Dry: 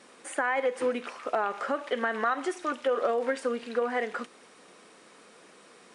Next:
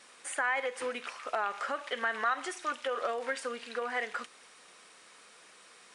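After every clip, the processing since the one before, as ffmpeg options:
-af "equalizer=f=260:w=0.39:g=-14,volume=2dB"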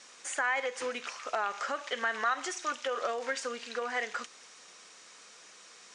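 -af "lowpass=f=6.5k:t=q:w=2.9"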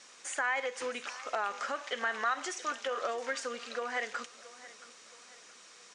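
-af "aecho=1:1:674|1348|2022:0.126|0.0491|0.0191,volume=-1.5dB"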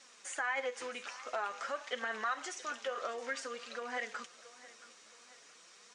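-af "flanger=delay=3.6:depth=6.4:regen=44:speed=0.5:shape=triangular"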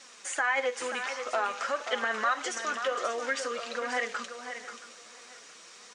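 -af "aecho=1:1:533:0.355,volume=7.5dB"

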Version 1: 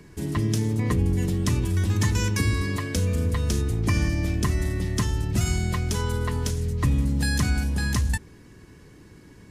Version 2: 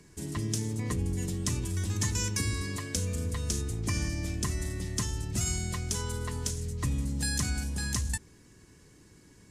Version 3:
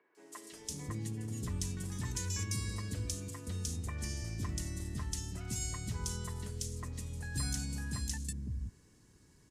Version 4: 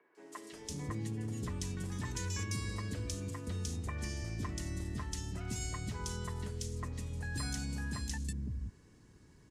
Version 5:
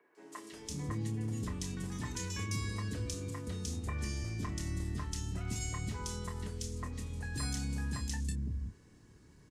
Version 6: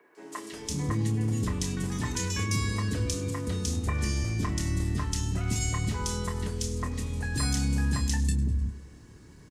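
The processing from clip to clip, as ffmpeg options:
-af "equalizer=f=7.6k:t=o:w=1.4:g=11,volume=-8.5dB"
-filter_complex "[0:a]acrossover=split=400|2300[a][b][c];[c]adelay=150[d];[a]adelay=520[e];[e][b][d]amix=inputs=3:normalize=0,volume=-6.5dB"
-filter_complex "[0:a]highshelf=f=5.4k:g=-11.5,acrossover=split=270|1100[a][b][c];[a]alimiter=level_in=12.5dB:limit=-24dB:level=0:latency=1:release=275,volume=-12.5dB[d];[d][b][c]amix=inputs=3:normalize=0,volume=3.5dB"
-filter_complex "[0:a]asplit=2[a][b];[b]adelay=28,volume=-7.5dB[c];[a][c]amix=inputs=2:normalize=0"
-af "aecho=1:1:101|202|303|404|505:0.106|0.0625|0.0369|0.0218|0.0128,volume=8.5dB"

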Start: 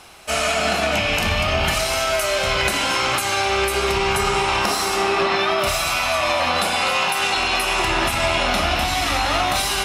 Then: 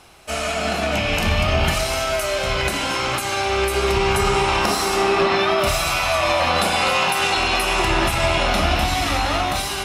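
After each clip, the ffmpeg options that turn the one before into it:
-af "lowshelf=f=430:g=6.5,bandreject=f=50:t=h:w=6,bandreject=f=100:t=h:w=6,bandreject=f=150:t=h:w=6,bandreject=f=200:t=h:w=6,bandreject=f=250:t=h:w=6,dynaudnorm=f=400:g=5:m=11.5dB,volume=-5dB"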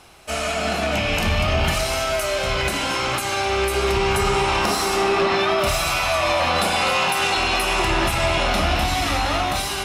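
-af "asoftclip=type=tanh:threshold=-10.5dB"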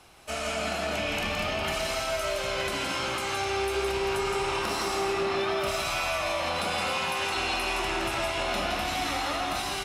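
-filter_complex "[0:a]acrossover=split=190|7500[a][b][c];[a]acompressor=threshold=-37dB:ratio=4[d];[b]acompressor=threshold=-21dB:ratio=4[e];[c]acompressor=threshold=-40dB:ratio=4[f];[d][e][f]amix=inputs=3:normalize=0,aecho=1:1:166:0.596,volume=-6.5dB"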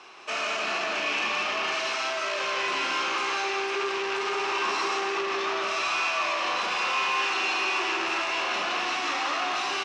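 -filter_complex "[0:a]asoftclip=type=hard:threshold=-33dB,highpass=350,equalizer=f=370:t=q:w=4:g=7,equalizer=f=600:t=q:w=4:g=-3,equalizer=f=1.1k:t=q:w=4:g=9,equalizer=f=1.7k:t=q:w=4:g=4,equalizer=f=2.6k:t=q:w=4:g=7,equalizer=f=5.8k:t=q:w=4:g=3,lowpass=f=6.2k:w=0.5412,lowpass=f=6.2k:w=1.3066,asplit=2[a][b];[b]adelay=37,volume=-9dB[c];[a][c]amix=inputs=2:normalize=0,volume=3.5dB"

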